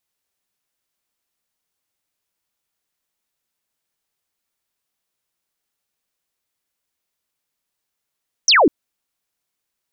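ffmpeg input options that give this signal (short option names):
-f lavfi -i "aevalsrc='0.355*clip(t/0.002,0,1)*clip((0.2-t)/0.002,0,1)*sin(2*PI*6400*0.2/log(250/6400)*(exp(log(250/6400)*t/0.2)-1))':d=0.2:s=44100"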